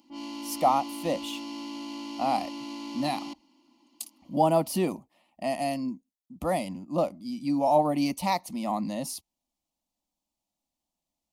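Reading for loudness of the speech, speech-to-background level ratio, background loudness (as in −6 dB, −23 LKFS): −28.5 LKFS, 10.0 dB, −38.5 LKFS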